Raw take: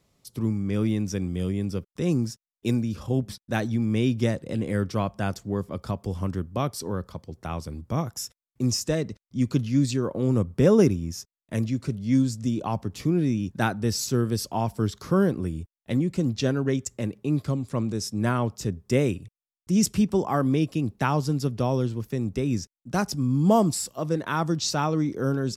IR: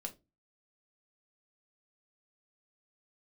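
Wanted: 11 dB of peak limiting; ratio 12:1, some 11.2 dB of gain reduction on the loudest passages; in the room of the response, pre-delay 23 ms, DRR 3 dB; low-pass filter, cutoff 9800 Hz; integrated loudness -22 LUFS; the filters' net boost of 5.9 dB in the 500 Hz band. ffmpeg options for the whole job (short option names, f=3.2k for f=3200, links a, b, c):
-filter_complex "[0:a]lowpass=9.8k,equalizer=f=500:t=o:g=7.5,acompressor=threshold=-20dB:ratio=12,alimiter=limit=-22dB:level=0:latency=1,asplit=2[a][b];[1:a]atrim=start_sample=2205,adelay=23[c];[b][c]afir=irnorm=-1:irlink=0,volume=-1dB[d];[a][d]amix=inputs=2:normalize=0,volume=8dB"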